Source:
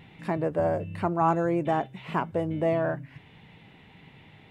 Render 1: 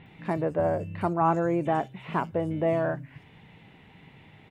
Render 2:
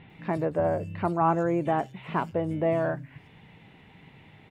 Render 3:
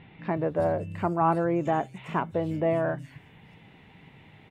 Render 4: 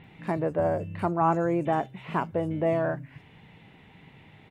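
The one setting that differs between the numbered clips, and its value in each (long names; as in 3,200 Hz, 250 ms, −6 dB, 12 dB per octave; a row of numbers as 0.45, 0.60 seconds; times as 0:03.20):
multiband delay without the direct sound, delay time: 60, 100, 370, 40 milliseconds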